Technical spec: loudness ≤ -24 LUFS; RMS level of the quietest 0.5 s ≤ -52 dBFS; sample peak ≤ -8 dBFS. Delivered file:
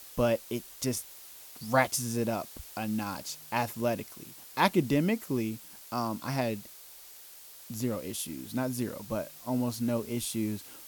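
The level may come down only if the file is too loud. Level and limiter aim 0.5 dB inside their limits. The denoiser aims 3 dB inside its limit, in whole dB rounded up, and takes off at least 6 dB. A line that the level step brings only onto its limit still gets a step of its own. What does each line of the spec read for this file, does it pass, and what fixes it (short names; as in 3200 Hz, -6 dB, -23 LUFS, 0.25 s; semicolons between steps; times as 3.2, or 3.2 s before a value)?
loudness -32.0 LUFS: OK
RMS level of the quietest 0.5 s -50 dBFS: fail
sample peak -10.0 dBFS: OK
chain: denoiser 6 dB, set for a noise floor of -50 dBFS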